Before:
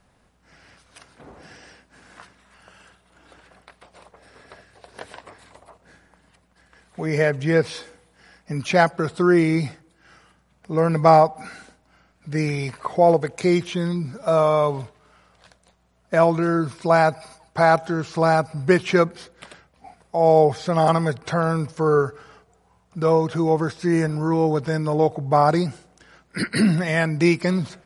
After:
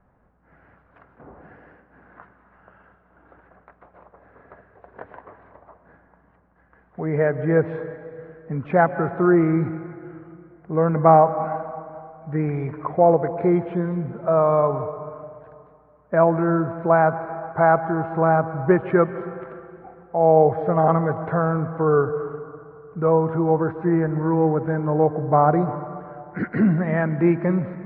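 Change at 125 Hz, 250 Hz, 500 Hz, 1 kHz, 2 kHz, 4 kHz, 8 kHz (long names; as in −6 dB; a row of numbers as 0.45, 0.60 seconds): +0.5 dB, +0.5 dB, +0.5 dB, +0.5 dB, −4.0 dB, below −25 dB, below −40 dB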